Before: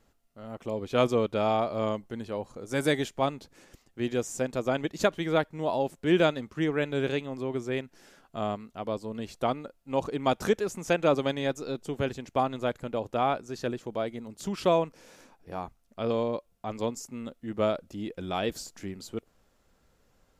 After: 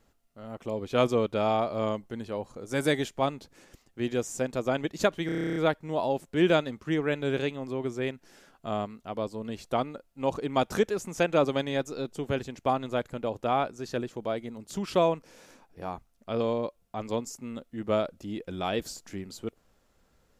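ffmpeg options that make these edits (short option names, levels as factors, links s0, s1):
-filter_complex "[0:a]asplit=11[s0][s1][s2][s3][s4][s5][s6][s7][s8][s9][s10];[s0]atrim=end=5.292[s11];[s1]atrim=start=5.258:end=5.292[s12];[s2]atrim=start=5.258:end=5.292[s13];[s3]atrim=start=5.258:end=5.292[s14];[s4]atrim=start=5.258:end=5.292[s15];[s5]atrim=start=5.258:end=5.292[s16];[s6]atrim=start=5.258:end=5.292[s17];[s7]atrim=start=5.258:end=5.292[s18];[s8]atrim=start=5.258:end=5.292[s19];[s9]atrim=start=5.258:end=5.292[s20];[s10]atrim=start=5.258[s21];[s11][s12]acrossfade=d=0.004:c1=hsin:c2=hsin[s22];[s22][s13]acrossfade=d=0.004:c1=hsin:c2=hsin[s23];[s23][s14]acrossfade=d=0.004:c1=hsin:c2=hsin[s24];[s24][s15]acrossfade=d=0.004:c1=hsin:c2=hsin[s25];[s25][s16]acrossfade=d=0.004:c1=hsin:c2=hsin[s26];[s26][s17]acrossfade=d=0.004:c1=hsin:c2=hsin[s27];[s27][s18]acrossfade=d=0.004:c1=hsin:c2=hsin[s28];[s28][s19]acrossfade=d=0.004:c1=hsin:c2=hsin[s29];[s29][s20]acrossfade=d=0.004:c1=hsin:c2=hsin[s30];[s30][s21]acrossfade=d=0.004:c1=hsin:c2=hsin"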